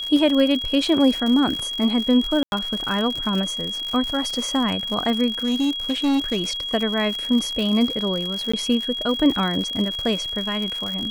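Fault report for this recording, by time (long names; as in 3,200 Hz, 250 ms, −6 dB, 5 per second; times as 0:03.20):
surface crackle 100 per second −25 dBFS
whistle 3,300 Hz −26 dBFS
0:02.43–0:02.52: drop-out 91 ms
0:05.35–0:06.48: clipping −17 dBFS
0:08.52–0:08.54: drop-out 15 ms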